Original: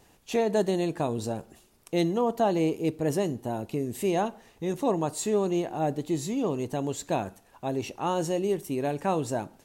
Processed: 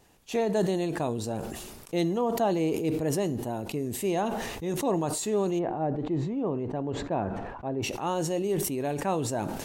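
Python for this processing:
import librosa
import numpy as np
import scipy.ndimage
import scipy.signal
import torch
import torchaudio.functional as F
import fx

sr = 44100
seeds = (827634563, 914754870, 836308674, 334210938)

y = fx.lowpass(x, sr, hz=1500.0, slope=12, at=(5.58, 7.82), fade=0.02)
y = fx.sustainer(y, sr, db_per_s=35.0)
y = F.gain(torch.from_numpy(y), -2.0).numpy()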